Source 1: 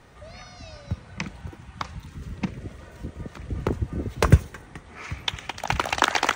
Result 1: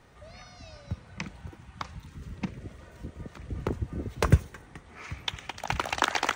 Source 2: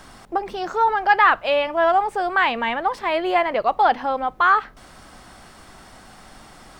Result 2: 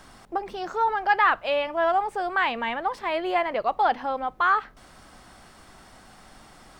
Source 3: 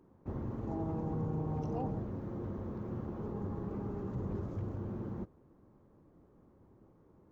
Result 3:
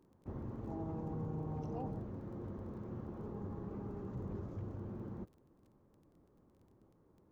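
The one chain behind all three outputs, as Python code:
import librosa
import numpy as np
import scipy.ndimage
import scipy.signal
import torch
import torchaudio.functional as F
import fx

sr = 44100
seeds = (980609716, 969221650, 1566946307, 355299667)

y = fx.dmg_crackle(x, sr, seeds[0], per_s=14.0, level_db=-53.0)
y = y * librosa.db_to_amplitude(-5.0)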